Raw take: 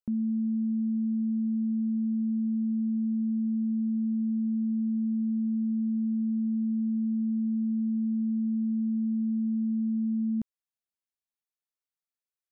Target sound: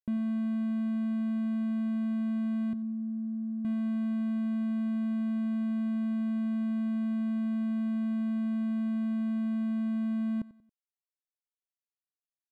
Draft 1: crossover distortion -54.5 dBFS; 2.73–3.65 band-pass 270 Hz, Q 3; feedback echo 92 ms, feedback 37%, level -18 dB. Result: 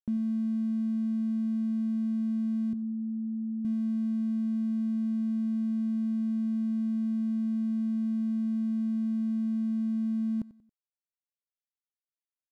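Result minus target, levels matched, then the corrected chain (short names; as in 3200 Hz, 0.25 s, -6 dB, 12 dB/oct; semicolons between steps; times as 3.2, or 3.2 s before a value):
crossover distortion: distortion -12 dB
crossover distortion -43 dBFS; 2.73–3.65 band-pass 270 Hz, Q 3; feedback echo 92 ms, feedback 37%, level -18 dB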